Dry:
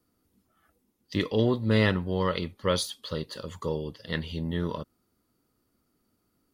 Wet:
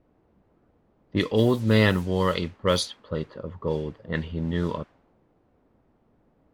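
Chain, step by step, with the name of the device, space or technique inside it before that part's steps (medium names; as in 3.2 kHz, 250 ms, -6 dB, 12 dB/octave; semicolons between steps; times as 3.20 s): cassette deck with a dynamic noise filter (white noise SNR 22 dB; level-controlled noise filter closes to 420 Hz, open at -21 dBFS); trim +3.5 dB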